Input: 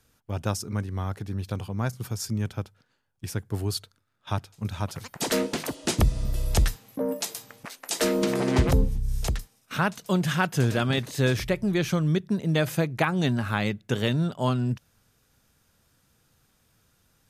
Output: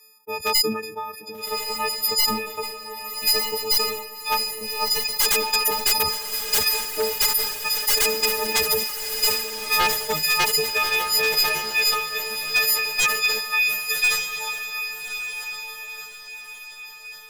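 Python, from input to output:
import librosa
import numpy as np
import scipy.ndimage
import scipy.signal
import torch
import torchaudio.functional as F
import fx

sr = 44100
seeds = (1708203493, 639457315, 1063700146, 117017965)

y = fx.freq_snap(x, sr, grid_st=6)
y = scipy.signal.sosfilt(scipy.signal.butter(2, 57.0, 'highpass', fs=sr, output='sos'), y)
y = fx.notch(y, sr, hz=840.0, q=12.0)
y = fx.dereverb_blind(y, sr, rt60_s=1.3)
y = fx.ripple_eq(y, sr, per_octave=0.82, db=18)
y = fx.transient(y, sr, attack_db=5, sustain_db=-5)
y = fx.filter_sweep_highpass(y, sr, from_hz=410.0, to_hz=2000.0, start_s=9.82, end_s=13.52, q=0.91)
y = 10.0 ** (-13.5 / 20.0) * (np.abs((y / 10.0 ** (-13.5 / 20.0) + 3.0) % 4.0 - 2.0) - 1.0)
y = fx.dynamic_eq(y, sr, hz=300.0, q=0.96, threshold_db=-40.0, ratio=4.0, max_db=-6)
y = fx.echo_diffused(y, sr, ms=1197, feedback_pct=43, wet_db=-7.0)
y = fx.sustainer(y, sr, db_per_s=62.0)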